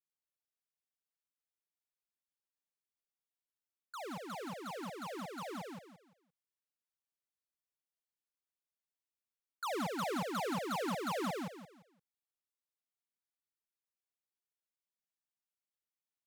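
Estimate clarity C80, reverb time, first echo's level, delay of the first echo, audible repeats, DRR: no reverb audible, no reverb audible, −3.0 dB, 172 ms, 3, no reverb audible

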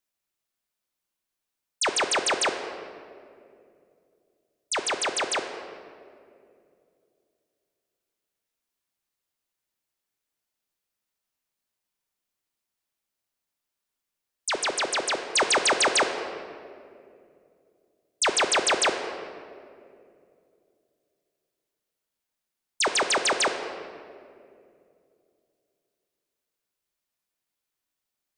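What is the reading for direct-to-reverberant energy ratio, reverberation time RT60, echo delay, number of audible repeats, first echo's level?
5.5 dB, 2.5 s, no echo audible, no echo audible, no echo audible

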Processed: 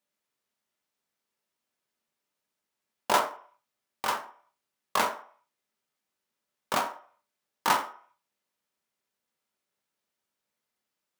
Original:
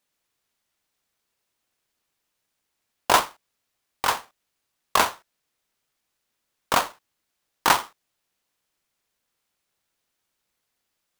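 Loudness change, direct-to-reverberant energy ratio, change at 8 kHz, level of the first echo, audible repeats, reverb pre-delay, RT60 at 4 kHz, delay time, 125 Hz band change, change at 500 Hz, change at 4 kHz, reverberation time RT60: −6.0 dB, 3.0 dB, −8.0 dB, no echo audible, no echo audible, 3 ms, 0.45 s, no echo audible, −7.5 dB, −4.0 dB, −7.5 dB, 0.45 s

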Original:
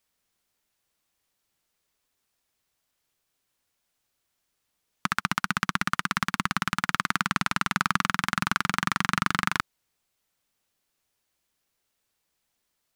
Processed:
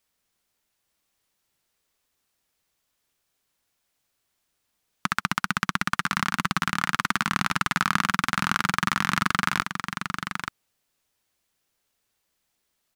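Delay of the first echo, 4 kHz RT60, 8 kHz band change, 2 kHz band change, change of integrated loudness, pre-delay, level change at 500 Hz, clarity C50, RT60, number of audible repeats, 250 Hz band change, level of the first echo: 880 ms, no reverb audible, +2.0 dB, +2.0 dB, +1.0 dB, no reverb audible, +2.0 dB, no reverb audible, no reverb audible, 1, +2.0 dB, −6.5 dB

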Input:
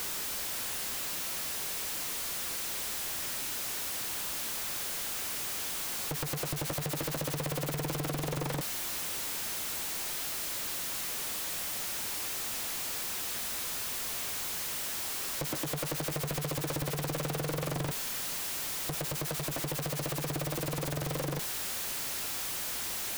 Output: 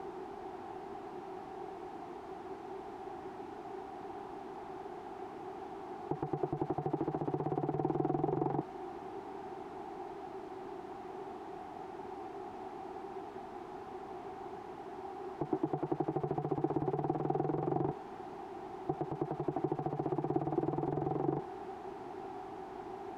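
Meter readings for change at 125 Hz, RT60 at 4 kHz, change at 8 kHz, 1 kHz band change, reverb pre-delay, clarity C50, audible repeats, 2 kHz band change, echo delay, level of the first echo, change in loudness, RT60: −4.0 dB, no reverb audible, below −35 dB, +3.0 dB, no reverb audible, no reverb audible, no echo audible, −16.0 dB, no echo audible, no echo audible, −6.5 dB, no reverb audible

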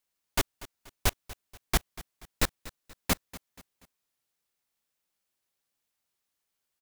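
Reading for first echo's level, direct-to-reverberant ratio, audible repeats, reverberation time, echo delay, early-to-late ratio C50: −18.0 dB, no reverb audible, 3, no reverb audible, 240 ms, no reverb audible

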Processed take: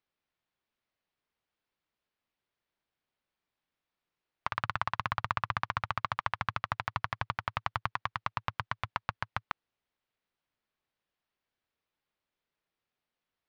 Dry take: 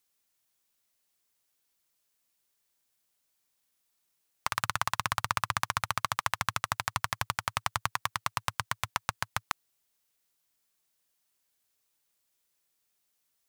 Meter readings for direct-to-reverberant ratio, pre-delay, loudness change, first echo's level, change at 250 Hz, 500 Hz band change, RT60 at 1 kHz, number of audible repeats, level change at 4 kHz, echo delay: no reverb audible, no reverb audible, −3.0 dB, no echo audible, −0.5 dB, −1.0 dB, no reverb audible, no echo audible, −8.0 dB, no echo audible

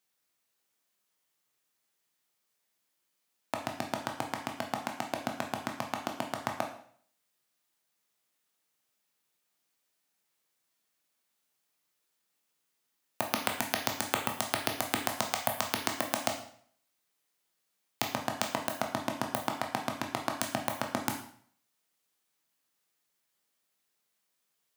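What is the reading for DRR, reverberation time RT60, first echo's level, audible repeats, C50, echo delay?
2.0 dB, 0.55 s, no echo audible, no echo audible, 7.5 dB, no echo audible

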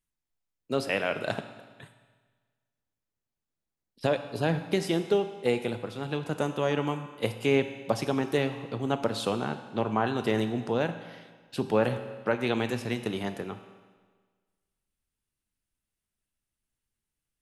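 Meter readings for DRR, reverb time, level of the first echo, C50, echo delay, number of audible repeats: 8.0 dB, 1.5 s, no echo audible, 10.0 dB, no echo audible, no echo audible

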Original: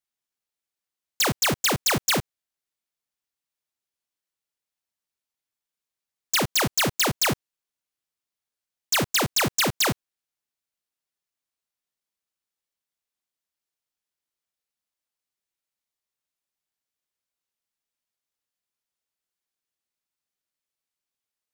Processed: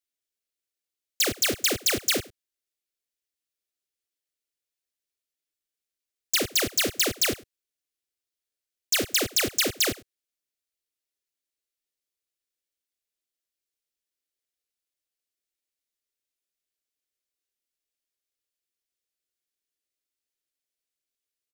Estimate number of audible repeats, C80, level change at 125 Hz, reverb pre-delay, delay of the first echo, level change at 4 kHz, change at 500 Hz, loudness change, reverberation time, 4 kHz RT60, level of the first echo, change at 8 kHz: 1, no reverb audible, −10.0 dB, no reverb audible, 100 ms, −0.5 dB, −1.5 dB, −1.5 dB, no reverb audible, no reverb audible, −21.5 dB, 0.0 dB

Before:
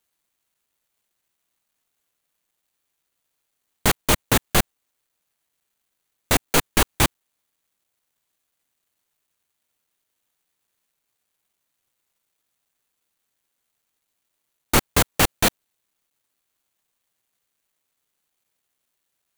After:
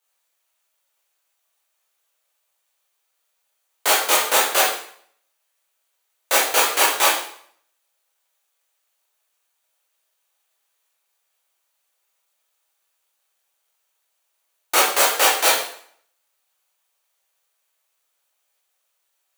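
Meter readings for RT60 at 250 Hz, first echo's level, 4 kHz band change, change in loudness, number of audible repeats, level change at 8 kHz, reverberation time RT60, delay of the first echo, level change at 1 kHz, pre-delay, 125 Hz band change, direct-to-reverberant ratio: 0.55 s, no echo audible, +4.5 dB, +3.5 dB, no echo audible, +5.0 dB, 0.60 s, no echo audible, +5.5 dB, 6 ms, below −30 dB, −6.0 dB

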